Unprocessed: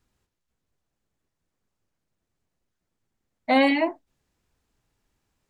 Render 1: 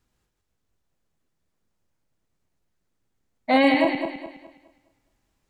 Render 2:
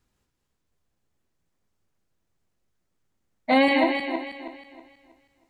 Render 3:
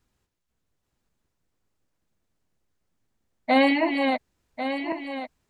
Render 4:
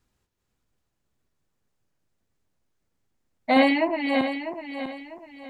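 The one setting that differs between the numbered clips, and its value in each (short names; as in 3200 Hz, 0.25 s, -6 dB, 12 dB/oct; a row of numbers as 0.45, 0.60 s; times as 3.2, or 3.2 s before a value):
regenerating reverse delay, time: 0.104, 0.16, 0.547, 0.324 s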